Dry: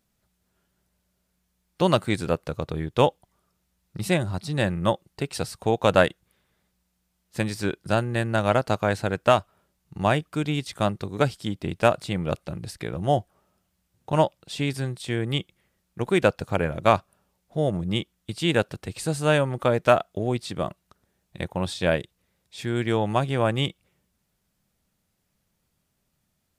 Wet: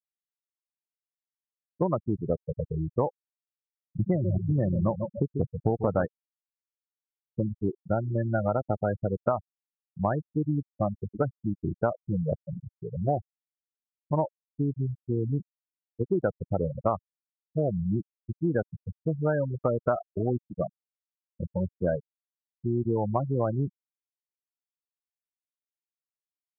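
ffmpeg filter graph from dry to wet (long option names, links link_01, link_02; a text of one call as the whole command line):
ffmpeg -i in.wav -filter_complex "[0:a]asettb=1/sr,asplit=3[link_01][link_02][link_03];[link_01]atrim=end=3.994[link_04];[link_02]atrim=start=3.99:end=6.06,asetpts=PTS-STARTPTS,afade=type=in:duration=0.004:curve=qsin,afade=type=out:start_time=2.066:duration=0.004:curve=qsin,lowshelf=frequency=450:gain=7,aecho=1:1:141|282|423|564|705:0.355|0.145|0.0596|0.0245|0.01,atrim=end_sample=91287[link_05];[link_03]atrim=start=6.056[link_06];[link_04][link_05]acrossfade=duration=0.004:curve1=hsin:curve2=qsin[link_07];[link_07][link_06]acrossfade=duration=0.004:curve1=qsin:curve2=hsin,lowpass=1800,afftfilt=real='re*gte(hypot(re,im),0.178)':imag='im*gte(hypot(re,im),0.178)':win_size=1024:overlap=0.75,acompressor=threshold=-23dB:ratio=6,volume=1dB" out.wav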